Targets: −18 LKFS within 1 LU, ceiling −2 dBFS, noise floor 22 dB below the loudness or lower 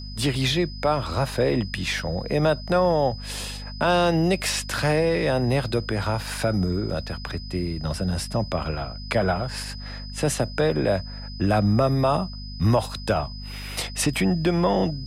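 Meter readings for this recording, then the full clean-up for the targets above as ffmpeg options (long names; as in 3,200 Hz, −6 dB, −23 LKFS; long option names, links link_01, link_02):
mains hum 50 Hz; hum harmonics up to 250 Hz; level of the hum −34 dBFS; interfering tone 5,000 Hz; level of the tone −40 dBFS; integrated loudness −24.0 LKFS; sample peak −10.0 dBFS; target loudness −18.0 LKFS
→ -af "bandreject=frequency=50:width_type=h:width=6,bandreject=frequency=100:width_type=h:width=6,bandreject=frequency=150:width_type=h:width=6,bandreject=frequency=200:width_type=h:width=6,bandreject=frequency=250:width_type=h:width=6"
-af "bandreject=frequency=5000:width=30"
-af "volume=6dB"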